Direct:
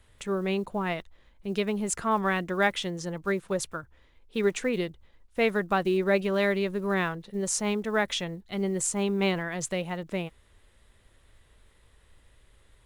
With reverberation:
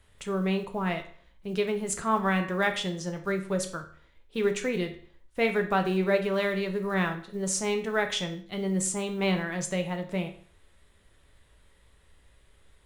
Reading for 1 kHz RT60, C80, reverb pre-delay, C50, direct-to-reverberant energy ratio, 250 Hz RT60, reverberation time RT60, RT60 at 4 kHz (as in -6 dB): 0.50 s, 15.0 dB, 5 ms, 11.0 dB, 5.0 dB, 0.50 s, 0.50 s, 0.45 s